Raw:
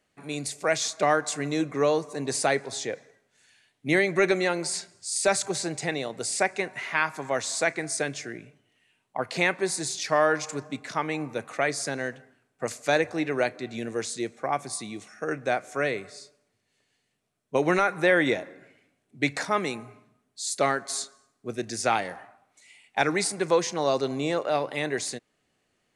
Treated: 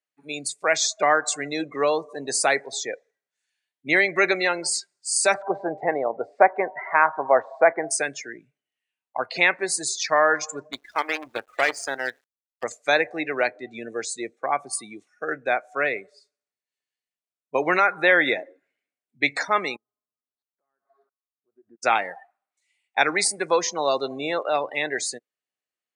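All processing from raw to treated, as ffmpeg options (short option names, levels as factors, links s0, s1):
-filter_complex "[0:a]asettb=1/sr,asplit=3[s0][s1][s2];[s0]atrim=end=5.344[s3];[s1]atrim=start=5.34:end=7.91,asetpts=PTS-STARTPTS,afade=t=in:d=0.004:c=qsin,afade=t=out:st=2.566:d=0.004:c=qsin,lowpass=1400,equalizer=f=710:w=0.67:g=9[s4];[s2]atrim=start=7.906[s5];[s3][s4]acrossfade=d=0.004:c1=hsin:c2=qsin[s6];[s6][s5]acrossfade=d=0.004:c1=qsin:c2=hsin,asettb=1/sr,asplit=3[s7][s8][s9];[s7]atrim=end=10.724[s10];[s8]atrim=start=10.72:end=12.64,asetpts=PTS-STARTPTS,afade=t=in:d=0.004:c=qsin,afade=t=out:st=1.916:d=0.004:c=qsin,acrusher=bits=5:dc=4:mix=0:aa=0.000001,equalizer=f=160:w=4.9:g=-12.5[s11];[s9]atrim=start=12.636[s12];[s10][s11]acrossfade=d=0.004:c1=hsin:c2=qsin[s13];[s13][s12]acrossfade=d=0.004:c1=qsin:c2=hsin,asettb=1/sr,asplit=3[s14][s15][s16];[s14]atrim=end=19.764[s17];[s15]atrim=start=19.76:end=21.83,asetpts=PTS-STARTPTS,afade=t=in:d=0.004:c=qsin,afade=t=out:st=2.066:d=0.004:c=qsin,lowpass=f=1400:w=0.5412,lowpass=f=1400:w=1.3066,acompressor=threshold=0.00891:ratio=5:attack=3.2:release=140:knee=1:detection=peak,aeval=exprs='val(0)*pow(10,-26*if(lt(mod(-1.5*n/s,1),2*abs(-1.5)/1000),1-mod(-1.5*n/s,1)/(2*abs(-1.5)/1000),(mod(-1.5*n/s,1)-2*abs(-1.5)/1000)/(1-2*abs(-1.5)/1000))/20)':c=same[s18];[s16]atrim=start=21.826[s19];[s17][s18]acrossfade=d=0.004:c1=hsin:c2=qsin[s20];[s20][s19]acrossfade=d=0.004:c1=qsin:c2=hsin,afftdn=nr=25:nf=-35,highpass=f=910:p=1,volume=2.24"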